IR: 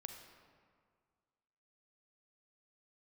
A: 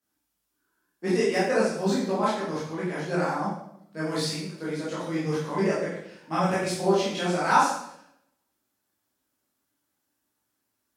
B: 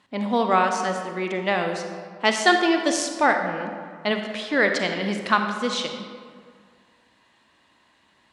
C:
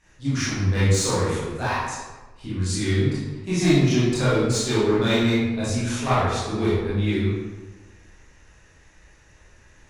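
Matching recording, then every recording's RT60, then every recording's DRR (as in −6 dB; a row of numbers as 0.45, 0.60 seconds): B; 0.75, 1.9, 1.2 seconds; −8.5, 4.5, −11.0 decibels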